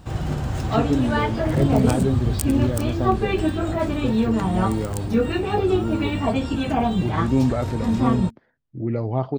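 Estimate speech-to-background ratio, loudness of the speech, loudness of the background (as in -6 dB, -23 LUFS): -3.0 dB, -26.5 LUFS, -23.5 LUFS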